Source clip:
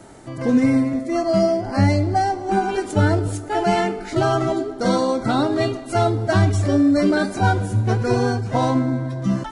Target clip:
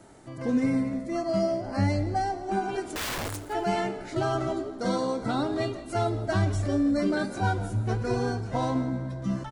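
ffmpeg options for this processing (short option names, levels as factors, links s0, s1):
-filter_complex "[0:a]asettb=1/sr,asplit=3[s0][s1][s2];[s0]atrim=end=2.954[s3];[s1]atrim=start=2.95:end=3.42,asetpts=PTS-STARTPTS,afade=t=in:d=0.004:c=qsin,afade=t=out:st=0.466:d=0.004:c=qsin,aeval=exprs='(mod(8.41*val(0)+1,2)-1)/8.41':c=same[s4];[s2]atrim=start=3.416[s5];[s3][s4]acrossfade=d=0.004:c1=hsin:c2=qsin[s6];[s6][s5]acrossfade=d=0.004:c1=qsin:c2=hsin,asplit=2[s7][s8];[s8]asplit=3[s9][s10][s11];[s9]adelay=167,afreqshift=-64,volume=0.158[s12];[s10]adelay=334,afreqshift=-128,volume=0.049[s13];[s11]adelay=501,afreqshift=-192,volume=0.0153[s14];[s12][s13][s14]amix=inputs=3:normalize=0[s15];[s7][s15]amix=inputs=2:normalize=0,volume=0.376"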